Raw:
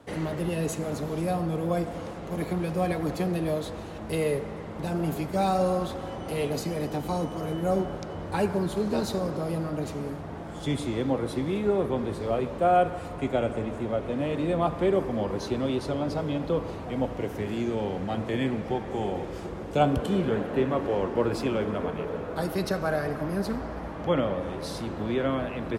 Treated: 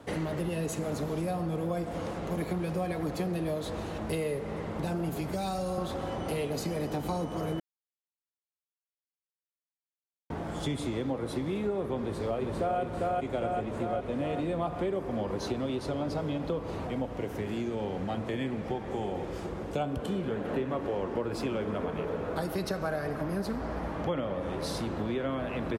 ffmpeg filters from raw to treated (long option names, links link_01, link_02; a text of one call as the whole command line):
ffmpeg -i in.wav -filter_complex "[0:a]asettb=1/sr,asplit=3[link_01][link_02][link_03];[link_01]atrim=end=5.094[link_04];[link_02]atrim=start=5.09:end=5.78,asetpts=PTS-STARTPTS,afade=type=in:duration=0.004:curve=qsin,afade=type=out:start_time=0.686:duration=0.004:curve=qsin,acrossover=split=130|3000[link_05][link_06][link_07];[link_06]acompressor=threshold=-29dB:ratio=6:attack=3.2:release=140:knee=2.83:detection=peak[link_08];[link_05][link_08][link_07]amix=inputs=3:normalize=0[link_09];[link_03]atrim=start=5.776[link_10];[link_04][link_09]acrossfade=duration=0.004:curve1=hsin:curve2=qsin[link_11];[link_11][link_10]acrossfade=duration=0.004:curve1=qsin:curve2=hsin,asplit=2[link_12][link_13];[link_13]afade=type=in:start_time=12.01:duration=0.01,afade=type=out:start_time=12.8:duration=0.01,aecho=0:1:400|800|1200|1600|2000|2400|2800|3200|3600:0.891251|0.534751|0.32085|0.19251|0.115506|0.0693037|0.0415822|0.0249493|0.0149696[link_14];[link_12][link_14]amix=inputs=2:normalize=0,asplit=5[link_15][link_16][link_17][link_18][link_19];[link_15]atrim=end=7.6,asetpts=PTS-STARTPTS,afade=type=out:start_time=7.596:duration=0.004:curve=hsin[link_20];[link_16]atrim=start=7.6:end=10.3,asetpts=PTS-STARTPTS,volume=0[link_21];[link_17]atrim=start=10.3:end=16.872,asetpts=PTS-STARTPTS,afade=type=in:duration=0.004:curve=hsin[link_22];[link_18]atrim=start=16.868:end=20.452,asetpts=PTS-STARTPTS,volume=-3dB[link_23];[link_19]atrim=start=20.448[link_24];[link_20][link_21][link_22]concat=n=3:v=0:a=1[link_25];[link_25][link_23]acrossfade=duration=0.004:curve1=hsin:curve2=hsin[link_26];[link_26][link_24]acrossfade=duration=0.004:curve1=hsin:curve2=hsin,acompressor=threshold=-32dB:ratio=4,volume=2.5dB" out.wav